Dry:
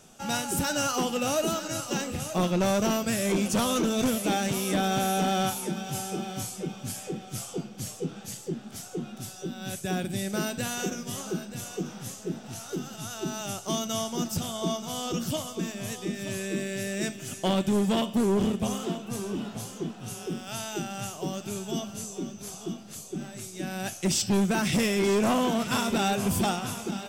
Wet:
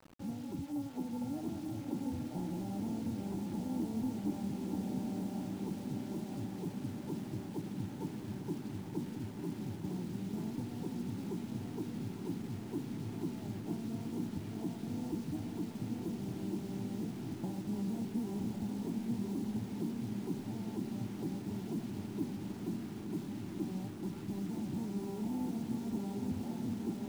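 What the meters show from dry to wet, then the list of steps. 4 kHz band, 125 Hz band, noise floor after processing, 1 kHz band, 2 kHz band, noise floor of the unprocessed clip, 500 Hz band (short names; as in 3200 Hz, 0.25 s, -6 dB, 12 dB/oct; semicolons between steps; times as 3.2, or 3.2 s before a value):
-22.0 dB, -6.5 dB, -45 dBFS, -18.5 dB, -22.0 dB, -44 dBFS, -15.5 dB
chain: sample sorter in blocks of 32 samples; bell 95 Hz +12.5 dB 1.3 oct; compressor 20:1, threshold -29 dBFS, peak gain reduction 13.5 dB; dynamic EQ 360 Hz, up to -4 dB, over -47 dBFS, Q 4.1; vocal tract filter u; requantised 10-bit, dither none; on a send: diffused feedback echo 1.045 s, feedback 69%, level -4 dB; on the sum: gain +4 dB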